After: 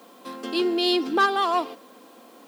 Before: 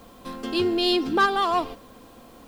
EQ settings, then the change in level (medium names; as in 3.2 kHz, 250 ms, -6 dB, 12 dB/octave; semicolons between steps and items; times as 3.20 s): high-pass 240 Hz 24 dB/octave; 0.0 dB